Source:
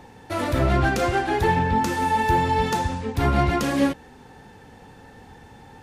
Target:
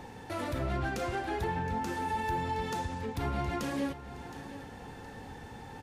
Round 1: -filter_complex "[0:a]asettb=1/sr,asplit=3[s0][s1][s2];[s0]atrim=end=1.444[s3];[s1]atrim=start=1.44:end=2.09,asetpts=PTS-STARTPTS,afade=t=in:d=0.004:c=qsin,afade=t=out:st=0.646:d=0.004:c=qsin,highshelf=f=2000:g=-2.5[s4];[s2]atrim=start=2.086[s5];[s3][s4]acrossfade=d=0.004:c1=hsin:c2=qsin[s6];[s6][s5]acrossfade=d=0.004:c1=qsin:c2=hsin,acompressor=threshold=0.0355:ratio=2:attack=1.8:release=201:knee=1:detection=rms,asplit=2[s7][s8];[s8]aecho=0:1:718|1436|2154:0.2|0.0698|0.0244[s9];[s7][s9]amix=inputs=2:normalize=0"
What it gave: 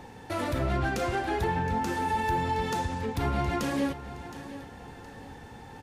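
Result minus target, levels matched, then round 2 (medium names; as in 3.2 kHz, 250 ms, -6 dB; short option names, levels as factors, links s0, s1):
compression: peak gain reduction -4.5 dB
-filter_complex "[0:a]asettb=1/sr,asplit=3[s0][s1][s2];[s0]atrim=end=1.444[s3];[s1]atrim=start=1.44:end=2.09,asetpts=PTS-STARTPTS,afade=t=in:d=0.004:c=qsin,afade=t=out:st=0.646:d=0.004:c=qsin,highshelf=f=2000:g=-2.5[s4];[s2]atrim=start=2.086[s5];[s3][s4]acrossfade=d=0.004:c1=hsin:c2=qsin[s6];[s6][s5]acrossfade=d=0.004:c1=qsin:c2=hsin,acompressor=threshold=0.0119:ratio=2:attack=1.8:release=201:knee=1:detection=rms,asplit=2[s7][s8];[s8]aecho=0:1:718|1436|2154:0.2|0.0698|0.0244[s9];[s7][s9]amix=inputs=2:normalize=0"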